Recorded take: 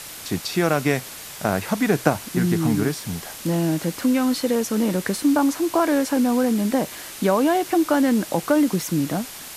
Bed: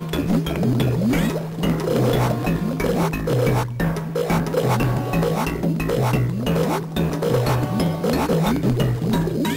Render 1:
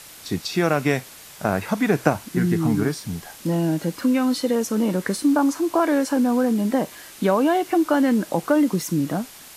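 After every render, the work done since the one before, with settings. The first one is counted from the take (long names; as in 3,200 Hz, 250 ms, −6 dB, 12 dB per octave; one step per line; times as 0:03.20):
noise reduction from a noise print 6 dB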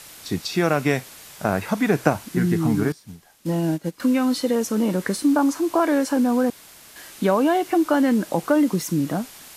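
0:02.92–0:04.00: expander for the loud parts 2.5 to 1, over −30 dBFS
0:06.50–0:06.96: fill with room tone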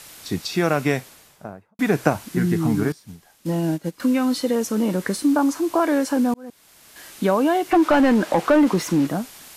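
0:00.84–0:01.79: fade out and dull
0:06.34–0:07.08: fade in
0:07.71–0:09.07: mid-hump overdrive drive 19 dB, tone 1,700 Hz, clips at −7 dBFS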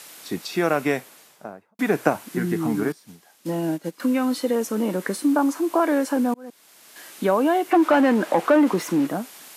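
high-pass filter 230 Hz 12 dB per octave
dynamic equaliser 5,100 Hz, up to −5 dB, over −45 dBFS, Q 0.87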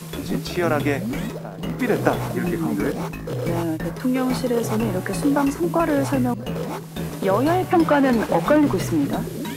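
mix in bed −7.5 dB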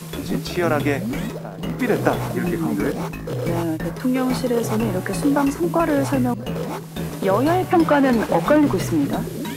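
level +1 dB
brickwall limiter −1 dBFS, peak gain reduction 1 dB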